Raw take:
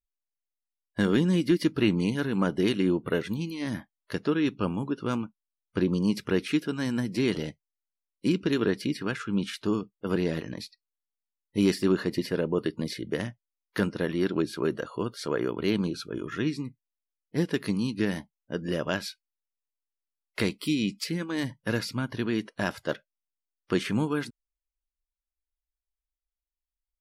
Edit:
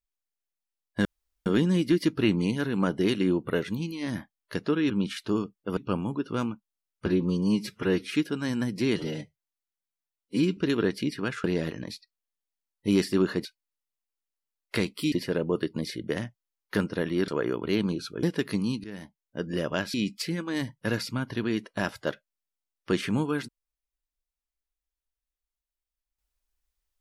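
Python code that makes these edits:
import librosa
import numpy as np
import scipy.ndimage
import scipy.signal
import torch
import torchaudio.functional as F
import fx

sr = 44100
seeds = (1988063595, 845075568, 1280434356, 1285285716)

y = fx.edit(x, sr, fx.insert_room_tone(at_s=1.05, length_s=0.41),
    fx.stretch_span(start_s=5.78, length_s=0.71, factor=1.5),
    fx.stretch_span(start_s=7.33, length_s=1.07, factor=1.5),
    fx.move(start_s=9.27, length_s=0.87, to_s=4.49),
    fx.cut(start_s=14.31, length_s=0.92),
    fx.cut(start_s=16.18, length_s=1.2),
    fx.fade_in_from(start_s=17.99, length_s=0.59, floor_db=-18.0),
    fx.move(start_s=19.09, length_s=1.67, to_s=12.15), tone=tone)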